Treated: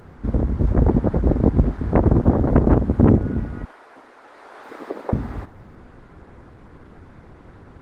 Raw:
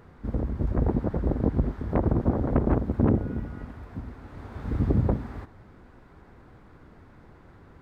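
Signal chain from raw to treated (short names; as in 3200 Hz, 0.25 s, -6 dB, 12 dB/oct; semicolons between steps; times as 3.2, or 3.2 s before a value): 3.65–5.13 Bessel high-pass 590 Hz, order 6; gain +8 dB; Opus 20 kbps 48000 Hz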